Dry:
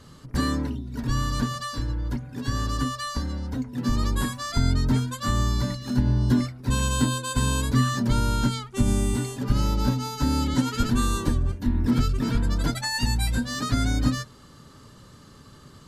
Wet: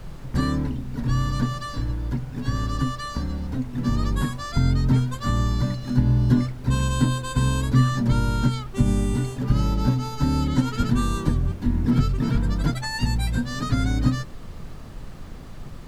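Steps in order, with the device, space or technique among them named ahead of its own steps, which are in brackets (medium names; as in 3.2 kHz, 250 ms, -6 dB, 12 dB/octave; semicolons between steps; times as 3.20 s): car interior (peaking EQ 150 Hz +8 dB 0.54 oct; treble shelf 4.4 kHz -7 dB; brown noise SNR 13 dB)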